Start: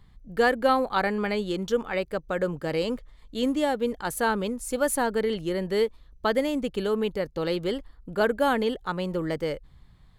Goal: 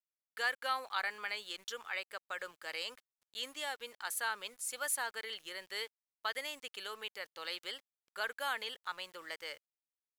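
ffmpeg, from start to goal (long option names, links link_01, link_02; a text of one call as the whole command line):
ffmpeg -i in.wav -filter_complex "[0:a]highpass=1500,asplit=2[link_01][link_02];[link_02]alimiter=level_in=0.5dB:limit=-24dB:level=0:latency=1:release=64,volume=-0.5dB,volume=-3dB[link_03];[link_01][link_03]amix=inputs=2:normalize=0,aeval=exprs='val(0)*gte(abs(val(0)),0.00282)':channel_layout=same,volume=-7.5dB" out.wav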